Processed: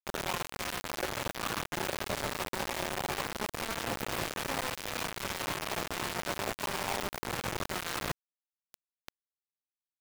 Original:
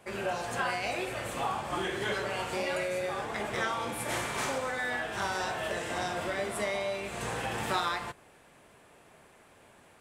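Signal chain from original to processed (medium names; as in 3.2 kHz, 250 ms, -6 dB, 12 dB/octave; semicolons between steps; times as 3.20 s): tracing distortion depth 0.32 ms; formant shift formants +6 st; in parallel at -2 dB: upward compressor, threshold -34 dBFS; on the sum: tilt shelf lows +9.5 dB, about 1.5 kHz; band-stop 760 Hz, Q 12; de-hum 219.3 Hz, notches 3; reverse; compression 12:1, threshold -31 dBFS, peak gain reduction 14.5 dB; reverse; high-pass 64 Hz 12 dB/octave; echo that smears into a reverb 1151 ms, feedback 50%, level -13.5 dB; bit crusher 5-bit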